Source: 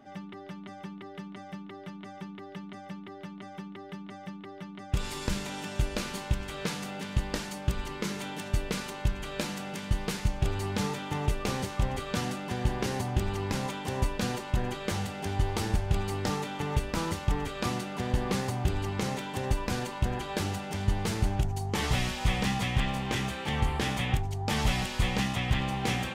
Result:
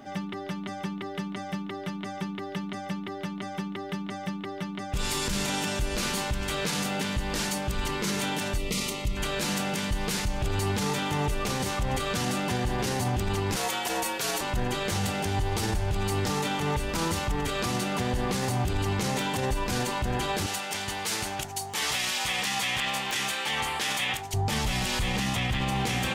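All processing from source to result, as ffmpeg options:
-filter_complex "[0:a]asettb=1/sr,asplit=3[a][b][c];[a]atrim=end=8.584[d];[b]atrim=start=8.58:end=9.17,asetpts=PTS-STARTPTS,afade=t=in:d=0.004:c=qsin,afade=t=out:st=0.586:d=0.004:c=qsin,asuperstop=centerf=1600:order=8:qfactor=3.6,equalizer=f=880:w=1.3:g=-8[e];[c]atrim=start=9.166[f];[d][e]acrossfade=d=0.004:c1=hsin:c2=qsin[g];[g][f]acrossfade=d=0.004:c1=qsin:c2=hsin,asettb=1/sr,asplit=3[h][i][j];[h]atrim=end=13.564[k];[i]atrim=start=13.56:end=14.41,asetpts=PTS-STARTPTS,afade=t=in:d=0.004:c=qsin,afade=t=out:st=0.846:d=0.004:c=qsin,highpass=500,highshelf=f=11k:g=10,afreqshift=-64[l];[j]atrim=start=14.406[m];[k][l]acrossfade=d=0.004:c1=hsin:c2=qsin[n];[n][m]acrossfade=d=0.004:c1=qsin:c2=hsin,asettb=1/sr,asplit=3[o][p][q];[o]atrim=end=20.464[r];[p]atrim=start=20.46:end=24.34,asetpts=PTS-STARTPTS,afade=t=in:d=0.004:c=qsin,afade=t=out:st=3.876:d=0.004:c=qsin,highpass=f=1.1k:p=1,aeval=exprs='(mod(10.6*val(0)+1,2)-1)/10.6':c=same[s];[q]atrim=start=24.336[t];[r][s]acrossfade=d=0.004:c1=hsin:c2=qsin[u];[u][t]acrossfade=d=0.004:c1=qsin:c2=hsin,highshelf=f=3.9k:g=6,acompressor=threshold=-27dB:ratio=6,alimiter=level_in=3.5dB:limit=-24dB:level=0:latency=1:release=21,volume=-3.5dB,volume=8dB"

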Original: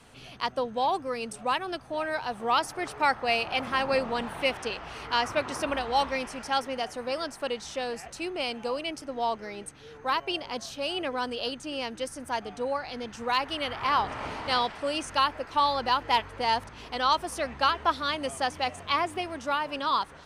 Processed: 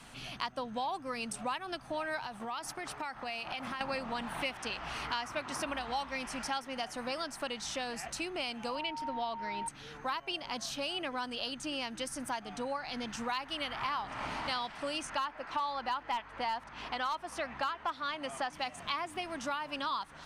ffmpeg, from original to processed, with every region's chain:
-filter_complex "[0:a]asettb=1/sr,asplit=3[a][b][c];[a]atrim=end=2.264[d];[b]atrim=start=2.26:end=3.81,asetpts=PTS-STARTPTS,afade=t=in:d=0.004:c=qsin,afade=t=out:st=1.546:d=0.004:c=qsin,bandreject=f=50:t=h:w=6,bandreject=f=100:t=h:w=6,bandreject=f=150:t=h:w=6,agate=range=-33dB:threshold=-38dB:ratio=3:release=100:detection=peak,acompressor=threshold=-37dB:ratio=5:attack=3.2:release=140:knee=1:detection=peak[e];[c]atrim=start=3.806[f];[d][e]acrossfade=d=0.004:c1=hsin:c2=qsin[g];[g][f]acrossfade=d=0.004:c1=qsin:c2=hsin,asettb=1/sr,asplit=3[h][i][j];[h]atrim=end=8.754[k];[i]atrim=start=8.75:end=9.68,asetpts=PTS-STARTPTS,afade=t=in:d=0.004:c=qsin,afade=t=out:st=0.926:d=0.004:c=qsin,aeval=exprs='val(0)+0.0178*sin(2*PI*920*n/s)':c=same,highshelf=f=5.3k:t=q:w=1.5:g=-8.5[l];[j]atrim=start=9.676[m];[k][l]acrossfade=d=0.004:c1=hsin:c2=qsin[n];[n][m]acrossfade=d=0.004:c1=qsin:c2=hsin,asettb=1/sr,asplit=3[o][p][q];[o]atrim=end=15.074[r];[p]atrim=start=15.07:end=18.53,asetpts=PTS-STARTPTS,afade=t=in:d=0.004:c=qsin,afade=t=out:st=3.456:d=0.004:c=qsin,asplit=2[s][t];[t]highpass=f=720:p=1,volume=8dB,asoftclip=type=tanh:threshold=-10dB[u];[s][u]amix=inputs=2:normalize=0,lowpass=f=1.7k:p=1,volume=-6dB,asoftclip=type=hard:threshold=-16.5dB[v];[q]atrim=start=18.526[w];[r][v]acrossfade=d=0.004:c1=hsin:c2=qsin[x];[x][w]acrossfade=d=0.004:c1=qsin:c2=hsin,equalizer=f=450:w=2:g=-9.5,acompressor=threshold=-38dB:ratio=4,equalizer=f=86:w=3.2:g=-13,volume=3.5dB"

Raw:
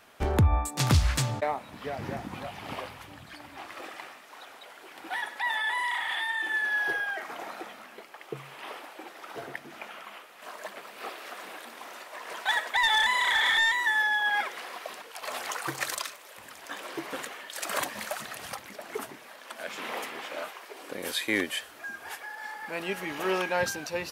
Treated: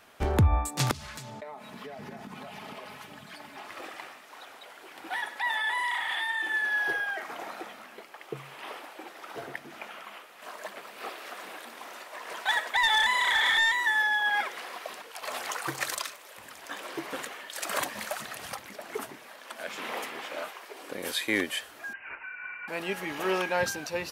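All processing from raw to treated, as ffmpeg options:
-filter_complex "[0:a]asettb=1/sr,asplit=3[a][b][c];[a]atrim=end=0.914[d];[b]atrim=start=0.91:end=3.7,asetpts=PTS-STARTPTS,afade=t=in:d=0.004:c=qsin,afade=t=out:st=2.786:d=0.004:c=qsin,highpass=f=100:w=0.5412,highpass=f=100:w=1.3066,aecho=1:1:4.7:0.59,atrim=end_sample=123039,acompressor=threshold=-38dB:ratio=10:attack=3.2:release=140:knee=1:detection=peak[e];[c]atrim=start=3.696[f];[d][e]acrossfade=d=0.004:c1=hsin:c2=qsin[g];[g][f]acrossfade=d=0.004:c1=qsin:c2=hsin,asettb=1/sr,asplit=3[h][i][j];[h]atrim=end=21.934[k];[i]atrim=start=21.93:end=22.68,asetpts=PTS-STARTPTS,afade=t=in:d=0.004:c=qsin,afade=t=out:st=0.746:d=0.004:c=qsin,highpass=f=370:p=1,lowpass=f=2.7k:t=q:w=0.5098,lowpass=f=2.7k:t=q:w=0.6013,lowpass=f=2.7k:t=q:w=0.9,lowpass=f=2.7k:t=q:w=2.563,afreqshift=-3200[l];[j]atrim=start=22.676[m];[k][l]acrossfade=d=0.004:c1=hsin:c2=qsin[n];[n][m]acrossfade=d=0.004:c1=qsin:c2=hsin"

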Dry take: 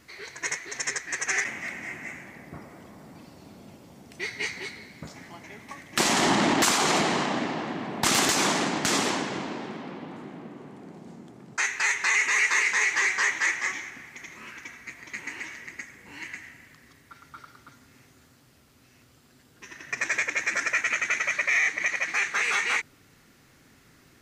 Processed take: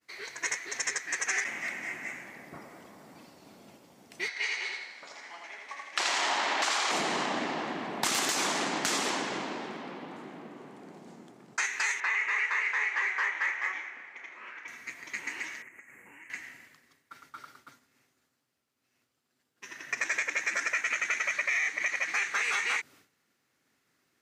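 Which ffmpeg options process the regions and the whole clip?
-filter_complex "[0:a]asettb=1/sr,asplit=3[a][b][c];[a]atrim=end=4.284[d];[b]atrim=start=4.28:end=6.91,asetpts=PTS-STARTPTS,afade=t=in:d=0.004:c=qsin,afade=t=out:st=2.626:d=0.004:c=qsin,highpass=640,lowpass=5.8k,aecho=1:1:82|164|246|328|410:0.708|0.29|0.119|0.0488|0.02,atrim=end_sample=115983[e];[c]atrim=start=6.906[f];[d][e]acrossfade=d=0.004:c1=hsin:c2=qsin[g];[g][f]acrossfade=d=0.004:c1=qsin:c2=hsin,asettb=1/sr,asplit=3[h][i][j];[h]atrim=end=12.004[k];[i]atrim=start=12:end=14.68,asetpts=PTS-STARTPTS,afade=t=in:d=0.004:c=qsin,afade=t=out:st=2.676:d=0.004:c=qsin,lowpass=f=8.6k:w=0.5412,lowpass=f=8.6k:w=1.3066,acrossover=split=370 2800:gain=0.126 1 0.112[l][m][n];[l][m][n]amix=inputs=3:normalize=0,asplit=2[o][p];[p]adelay=32,volume=-10.5dB[q];[o][q]amix=inputs=2:normalize=0,atrim=end_sample=118188[r];[j]atrim=start=14.676[s];[k][r]acrossfade=d=0.004:c1=hsin:c2=qsin[t];[t][s]acrossfade=d=0.004:c1=qsin:c2=hsin,asettb=1/sr,asplit=3[u][v][w];[u]atrim=end=15.624[x];[v]atrim=start=15.62:end=16.3,asetpts=PTS-STARTPTS,afade=t=in:d=0.004:c=qsin,afade=t=out:st=0.676:d=0.004:c=qsin,acompressor=threshold=-45dB:ratio=10:attack=3.2:release=140:knee=1:detection=peak,asuperstop=centerf=4400:order=8:qfactor=1[y];[w]atrim=start=16.296[z];[x][y]acrossfade=d=0.004:c1=hsin:c2=qsin[aa];[aa][z]acrossfade=d=0.004:c1=qsin:c2=hsin,highpass=f=370:p=1,agate=range=-33dB:threshold=-49dB:ratio=3:detection=peak,acompressor=threshold=-27dB:ratio=3"

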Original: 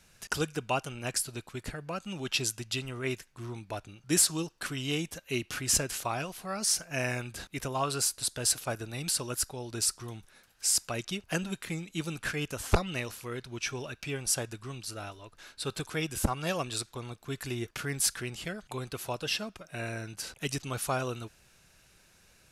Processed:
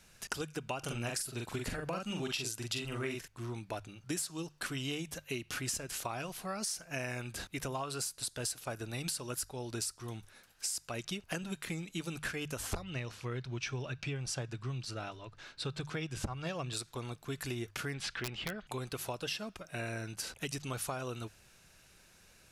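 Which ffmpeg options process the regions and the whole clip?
-filter_complex "[0:a]asettb=1/sr,asplit=3[a][b][c];[a]atrim=end=0.794[d];[b]atrim=start=0.79:end=3.28,asetpts=PTS-STARTPTS,afade=t=in:d=0.004:c=qsin,afade=t=out:st=2.486:d=0.004:c=qsin,acontrast=86,asplit=2[e][f];[f]adelay=43,volume=-3dB[g];[e][g]amix=inputs=2:normalize=0,atrim=end_sample=109809[h];[c]atrim=start=3.276[i];[d][h]acrossfade=d=0.004:c1=hsin:c2=qsin[j];[j][i]acrossfade=d=0.004:c1=qsin:c2=hsin,asettb=1/sr,asplit=3[k][l][m];[k]atrim=end=12.834[n];[l]atrim=start=12.83:end=16.73,asetpts=PTS-STARTPTS,afade=t=in:d=0.004:c=qsin,afade=t=out:st=3.896:d=0.004:c=qsin,lowpass=5.5k,equalizer=f=130:t=o:w=0.44:g=9[o];[m]atrim=start=16.726[p];[n][o]acrossfade=d=0.004:c1=hsin:c2=qsin[q];[q][p]acrossfade=d=0.004:c1=qsin:c2=hsin,asettb=1/sr,asplit=3[r][s][t];[r]atrim=end=17.944[u];[s]atrim=start=17.94:end=18.67,asetpts=PTS-STARTPTS,afade=t=in:d=0.004:c=qsin,afade=t=out:st=0.726:d=0.004:c=qsin,lowpass=f=3k:t=q:w=1.5,aeval=exprs='(mod(14.1*val(0)+1,2)-1)/14.1':c=same[v];[t]atrim=start=18.666[w];[u][v]acrossfade=d=0.004:c1=hsin:c2=qsin[x];[x][w]acrossfade=d=0.004:c1=qsin:c2=hsin,bandreject=f=50:t=h:w=6,bandreject=f=100:t=h:w=6,bandreject=f=150:t=h:w=6,acompressor=threshold=-34dB:ratio=12"

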